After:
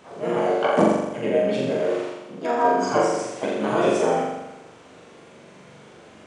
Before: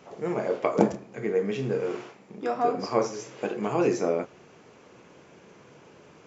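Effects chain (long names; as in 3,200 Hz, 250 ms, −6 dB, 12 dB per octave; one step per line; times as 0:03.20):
pitch-shifted copies added +5 semitones −2 dB
flutter between parallel walls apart 7.2 metres, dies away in 1 s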